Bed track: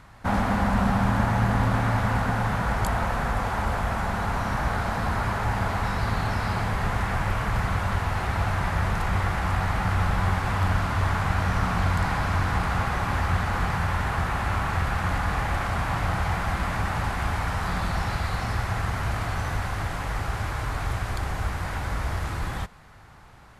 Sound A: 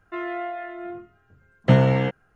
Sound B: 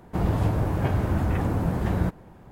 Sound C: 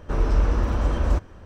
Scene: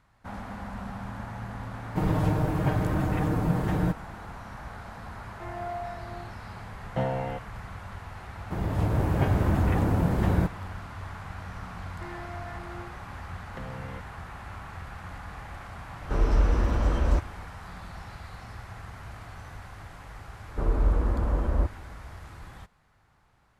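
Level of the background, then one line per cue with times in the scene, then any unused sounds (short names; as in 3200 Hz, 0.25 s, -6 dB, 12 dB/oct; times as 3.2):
bed track -15 dB
1.82 add B -2 dB + comb 6.5 ms, depth 62%
5.28 add A -15 dB + bell 750 Hz +13 dB
8.37 add B -7 dB + AGC gain up to 8 dB
11.89 add A -9 dB + compressor, threshold -29 dBFS
16.01 add C -2 dB
20.48 add C -3.5 dB + LPF 1400 Hz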